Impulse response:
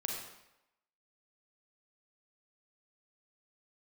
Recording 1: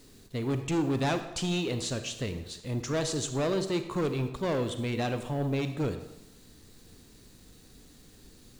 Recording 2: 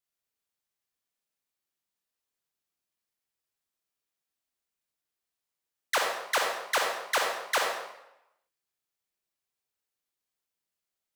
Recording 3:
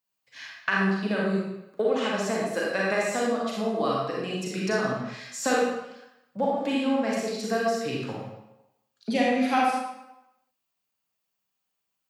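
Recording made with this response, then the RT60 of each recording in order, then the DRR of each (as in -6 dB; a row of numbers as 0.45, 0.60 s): 2; 0.90, 0.90, 0.90 s; 8.5, -0.5, -4.5 dB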